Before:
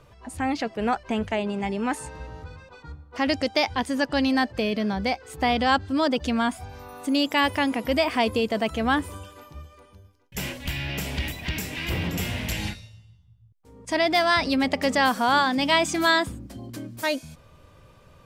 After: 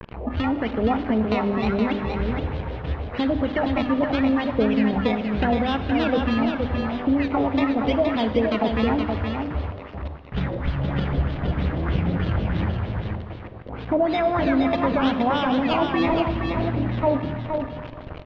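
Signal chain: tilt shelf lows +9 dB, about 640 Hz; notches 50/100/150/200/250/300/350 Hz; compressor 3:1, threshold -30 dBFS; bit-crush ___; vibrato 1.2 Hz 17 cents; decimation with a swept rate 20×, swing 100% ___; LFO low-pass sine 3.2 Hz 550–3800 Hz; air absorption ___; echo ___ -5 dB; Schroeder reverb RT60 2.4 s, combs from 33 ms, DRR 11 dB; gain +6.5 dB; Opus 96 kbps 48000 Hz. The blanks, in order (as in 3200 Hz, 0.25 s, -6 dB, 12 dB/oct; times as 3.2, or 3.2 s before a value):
7-bit, 0.83 Hz, 160 m, 0.47 s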